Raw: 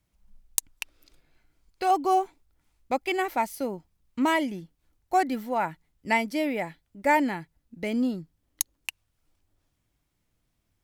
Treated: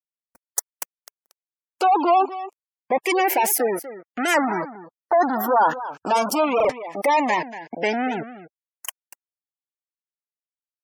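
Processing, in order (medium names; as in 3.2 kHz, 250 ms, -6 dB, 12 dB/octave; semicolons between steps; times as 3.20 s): fuzz box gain 46 dB, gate -45 dBFS; high-pass 480 Hz 12 dB/octave; delay 237 ms -14 dB; LFO notch saw down 0.23 Hz 910–3400 Hz; spectral gate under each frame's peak -20 dB strong; dynamic bell 1.2 kHz, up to +3 dB, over -36 dBFS, Q 2.1; gate with hold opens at -44 dBFS; peaking EQ 3.9 kHz -14 dB 0.64 oct; buffer glitch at 0.93/6.56/8.52 s, samples 2048, times 2; warped record 78 rpm, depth 160 cents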